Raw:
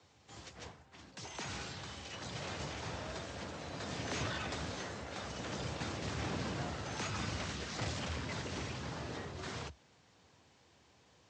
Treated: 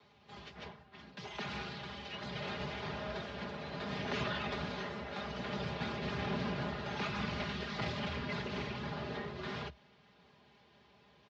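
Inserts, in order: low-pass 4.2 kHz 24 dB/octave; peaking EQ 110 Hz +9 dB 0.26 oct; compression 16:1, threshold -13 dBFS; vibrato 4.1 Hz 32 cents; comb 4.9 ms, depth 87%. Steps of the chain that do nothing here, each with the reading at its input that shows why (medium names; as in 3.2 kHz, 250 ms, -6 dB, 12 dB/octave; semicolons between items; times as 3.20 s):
compression, threshold -13 dBFS: peak at its input -24.5 dBFS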